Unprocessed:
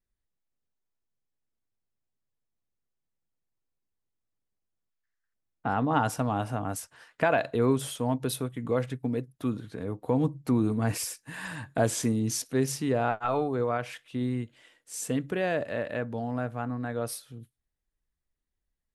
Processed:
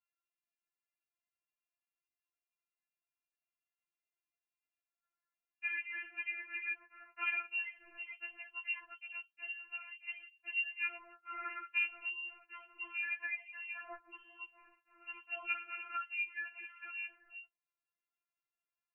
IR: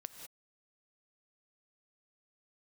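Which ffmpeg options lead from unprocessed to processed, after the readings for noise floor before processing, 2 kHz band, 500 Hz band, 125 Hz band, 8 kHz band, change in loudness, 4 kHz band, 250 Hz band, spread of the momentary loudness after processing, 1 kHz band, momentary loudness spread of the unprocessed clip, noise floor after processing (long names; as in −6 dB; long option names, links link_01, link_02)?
−84 dBFS, 0.0 dB, −33.0 dB, below −40 dB, below −40 dB, −10.0 dB, can't be measured, −39.5 dB, 15 LU, −16.5 dB, 11 LU, below −85 dBFS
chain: -af "highpass=frequency=130:width=0.5412,highpass=frequency=130:width=1.3066,adynamicequalizer=threshold=0.00447:dfrequency=1300:dqfactor=4.3:tfrequency=1300:tqfactor=4.3:attack=5:release=100:ratio=0.375:range=1.5:mode=boostabove:tftype=bell,acompressor=threshold=-32dB:ratio=8,lowpass=frequency=2600:width_type=q:width=0.5098,lowpass=frequency=2600:width_type=q:width=0.6013,lowpass=frequency=2600:width_type=q:width=0.9,lowpass=frequency=2600:width_type=q:width=2.563,afreqshift=-3100,afftfilt=real='re*4*eq(mod(b,16),0)':imag='im*4*eq(mod(b,16),0)':win_size=2048:overlap=0.75"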